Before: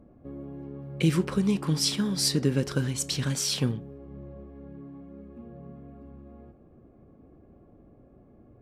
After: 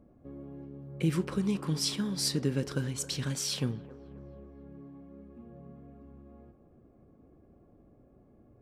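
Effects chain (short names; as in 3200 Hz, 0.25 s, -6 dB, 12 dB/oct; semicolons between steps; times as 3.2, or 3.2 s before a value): 0.64–1.11 bell 850 Hz -> 5900 Hz -7.5 dB 1.7 oct; band-limited delay 0.268 s, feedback 40%, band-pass 790 Hz, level -13 dB; 1.75–3.84 mismatched tape noise reduction decoder only; gain -5 dB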